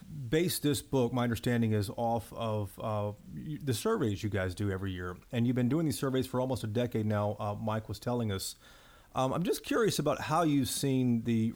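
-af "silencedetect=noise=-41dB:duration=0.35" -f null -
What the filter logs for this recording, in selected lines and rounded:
silence_start: 8.52
silence_end: 9.15 | silence_duration: 0.63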